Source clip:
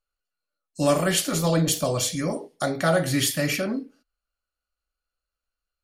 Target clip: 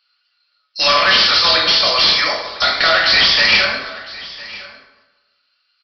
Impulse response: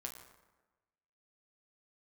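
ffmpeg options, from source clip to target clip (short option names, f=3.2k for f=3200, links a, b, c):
-filter_complex "[0:a]highpass=1.2k,asplit=2[a][b];[b]aeval=exprs='0.335*sin(PI/2*5.01*val(0)/0.335)':c=same,volume=-6.5dB[c];[a][c]amix=inputs=2:normalize=0,crystalizer=i=9:c=0,aresample=11025,asoftclip=type=tanh:threshold=-12dB,aresample=44100,aecho=1:1:1006:0.112[d];[1:a]atrim=start_sample=2205[e];[d][e]afir=irnorm=-1:irlink=0,volume=6dB"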